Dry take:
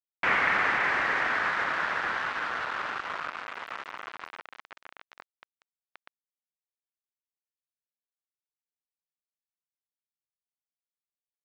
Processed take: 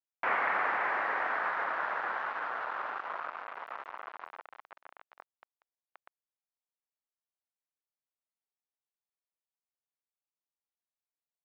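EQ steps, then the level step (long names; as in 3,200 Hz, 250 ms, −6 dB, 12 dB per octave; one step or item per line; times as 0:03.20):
resonant band-pass 780 Hz, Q 1.1
0.0 dB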